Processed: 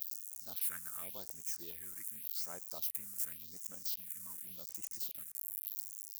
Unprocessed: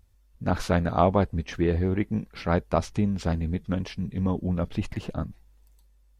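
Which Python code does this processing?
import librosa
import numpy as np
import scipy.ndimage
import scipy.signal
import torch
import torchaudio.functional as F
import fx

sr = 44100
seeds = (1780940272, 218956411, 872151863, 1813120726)

y = x + 0.5 * 10.0 ** (-24.0 / 20.0) * np.diff(np.sign(x), prepend=np.sign(x[:1]))
y = fx.phaser_stages(y, sr, stages=4, low_hz=550.0, high_hz=3700.0, hz=0.88, feedback_pct=40)
y = np.diff(y, prepend=0.0)
y = F.gain(torch.from_numpy(y), -5.5).numpy()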